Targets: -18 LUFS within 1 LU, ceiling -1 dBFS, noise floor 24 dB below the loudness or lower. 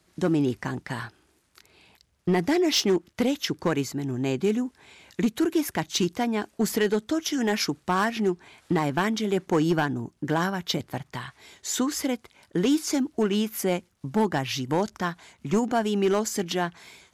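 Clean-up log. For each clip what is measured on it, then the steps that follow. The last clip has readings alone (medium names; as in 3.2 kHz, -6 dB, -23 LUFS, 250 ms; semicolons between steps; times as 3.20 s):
clipped samples 0.7%; clipping level -16.0 dBFS; loudness -26.5 LUFS; peak level -16.0 dBFS; loudness target -18.0 LUFS
-> clip repair -16 dBFS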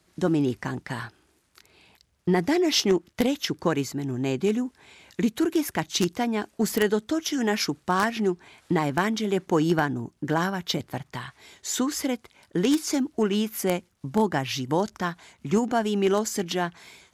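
clipped samples 0.0%; loudness -26.0 LUFS; peak level -7.0 dBFS; loudness target -18.0 LUFS
-> trim +8 dB; peak limiter -1 dBFS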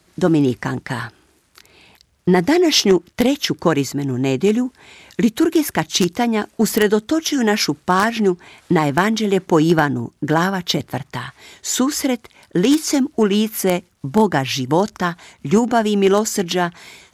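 loudness -18.0 LUFS; peak level -1.0 dBFS; noise floor -59 dBFS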